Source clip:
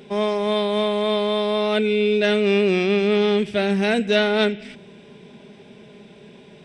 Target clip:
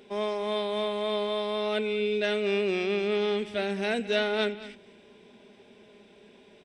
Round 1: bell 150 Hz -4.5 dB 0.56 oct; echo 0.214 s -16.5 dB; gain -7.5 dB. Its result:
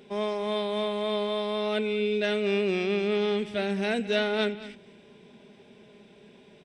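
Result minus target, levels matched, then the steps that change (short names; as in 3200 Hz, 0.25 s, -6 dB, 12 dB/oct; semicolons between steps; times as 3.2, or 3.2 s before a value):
125 Hz band +3.0 dB
change: bell 150 Hz -15 dB 0.56 oct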